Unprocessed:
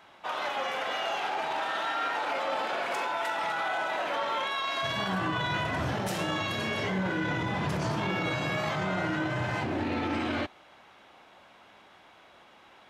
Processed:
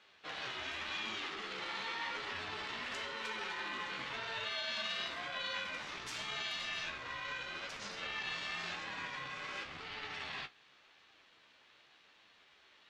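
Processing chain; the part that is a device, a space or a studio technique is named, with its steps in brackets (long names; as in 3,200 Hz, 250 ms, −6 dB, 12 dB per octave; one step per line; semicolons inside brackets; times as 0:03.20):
high-pass filter 1,100 Hz 6 dB per octave
high-frequency loss of the air 160 metres
first-order pre-emphasis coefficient 0.9
low-shelf EQ 370 Hz −5 dB
alien voice (ring modulation 450 Hz; flanger 0.9 Hz, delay 8.7 ms, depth 8.6 ms, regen +42%)
level +14 dB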